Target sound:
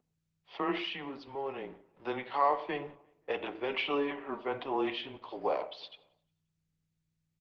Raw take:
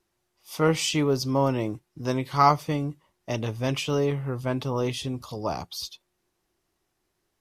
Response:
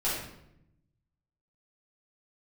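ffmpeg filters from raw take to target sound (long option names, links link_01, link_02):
-filter_complex "[0:a]asplit=3[link_01][link_02][link_03];[link_01]afade=type=out:start_time=3.67:duration=0.02[link_04];[link_02]aecho=1:1:5.4:0.55,afade=type=in:start_time=3.67:duration=0.02,afade=type=out:start_time=4.47:duration=0.02[link_05];[link_03]afade=type=in:start_time=4.47:duration=0.02[link_06];[link_04][link_05][link_06]amix=inputs=3:normalize=0,alimiter=limit=-17.5dB:level=0:latency=1:release=22,asplit=3[link_07][link_08][link_09];[link_07]afade=type=out:start_time=0.77:duration=0.02[link_10];[link_08]acompressor=threshold=-29dB:ratio=6,afade=type=in:start_time=0.77:duration=0.02,afade=type=out:start_time=2.05:duration=0.02[link_11];[link_09]afade=type=in:start_time=2.05:duration=0.02[link_12];[link_10][link_11][link_12]amix=inputs=3:normalize=0,aeval=exprs='sgn(val(0))*max(abs(val(0))-0.00158,0)':channel_layout=same,aeval=exprs='val(0)+0.00447*(sin(2*PI*60*n/s)+sin(2*PI*2*60*n/s)/2+sin(2*PI*3*60*n/s)/3+sin(2*PI*4*60*n/s)/4+sin(2*PI*5*60*n/s)/5)':channel_layout=same,highpass=frequency=530:width_type=q:width=0.5412,highpass=frequency=530:width_type=q:width=1.307,lowpass=frequency=3600:width_type=q:width=0.5176,lowpass=frequency=3600:width_type=q:width=0.7071,lowpass=frequency=3600:width_type=q:width=1.932,afreqshift=-140,asplit=2[link_13][link_14];[link_14]adelay=176,lowpass=frequency=2600:poles=1,volume=-23dB,asplit=2[link_15][link_16];[link_16]adelay=176,lowpass=frequency=2600:poles=1,volume=0.43,asplit=2[link_17][link_18];[link_18]adelay=176,lowpass=frequency=2600:poles=1,volume=0.43[link_19];[link_13][link_15][link_17][link_19]amix=inputs=4:normalize=0,asplit=2[link_20][link_21];[1:a]atrim=start_sample=2205,atrim=end_sample=6174,lowpass=2500[link_22];[link_21][link_22]afir=irnorm=-1:irlink=0,volume=-16dB[link_23];[link_20][link_23]amix=inputs=2:normalize=0" -ar 48000 -c:a libopus -b:a 16k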